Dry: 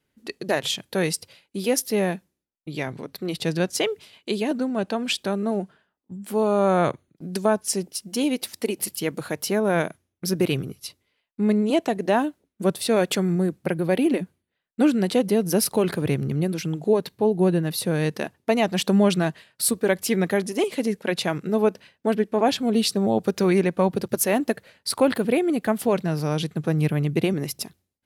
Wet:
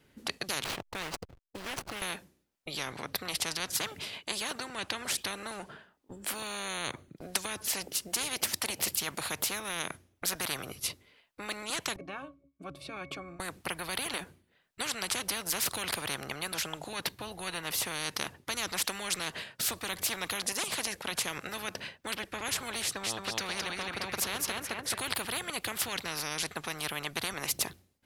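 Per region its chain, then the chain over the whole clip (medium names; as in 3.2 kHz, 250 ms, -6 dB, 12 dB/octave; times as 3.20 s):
0.64–2.02 s: median filter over 25 samples + hysteresis with a dead band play -48 dBFS + compression 2:1, threshold -33 dBFS
11.96–13.40 s: treble shelf 3.4 kHz +10 dB + pitch-class resonator C#, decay 0.14 s
22.82–24.99 s: low-pass 3.3 kHz 6 dB/octave + feedback delay 215 ms, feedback 26%, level -5 dB
whole clip: treble shelf 5.8 kHz -4 dB; spectrum-flattening compressor 10:1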